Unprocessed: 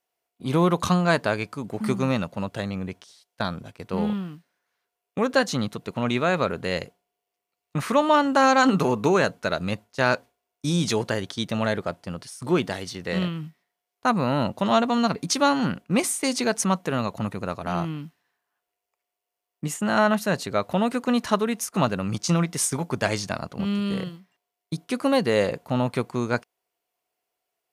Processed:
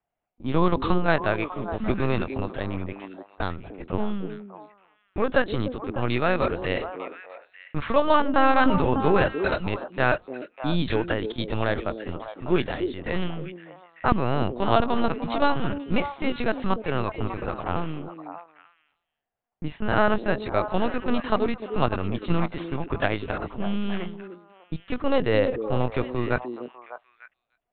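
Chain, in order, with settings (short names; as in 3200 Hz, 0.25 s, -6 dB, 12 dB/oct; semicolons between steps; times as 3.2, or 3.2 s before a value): LPC vocoder at 8 kHz pitch kept; delay with a stepping band-pass 0.299 s, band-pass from 330 Hz, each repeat 1.4 oct, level -4.5 dB; low-pass opened by the level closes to 1800 Hz, open at -17 dBFS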